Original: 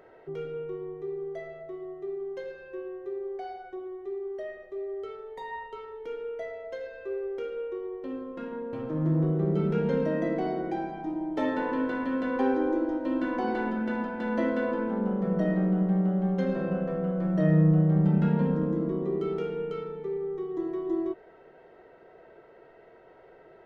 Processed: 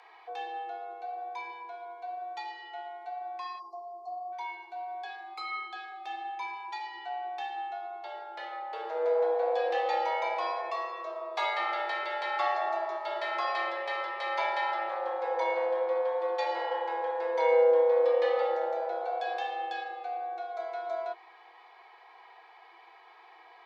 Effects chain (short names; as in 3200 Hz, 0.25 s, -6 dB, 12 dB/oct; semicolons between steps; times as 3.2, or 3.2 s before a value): graphic EQ 125/250/2000/4000 Hz +4/-11/+3/+11 dB; spectral delete 3.59–4.32, 860–3800 Hz; frequency shift +330 Hz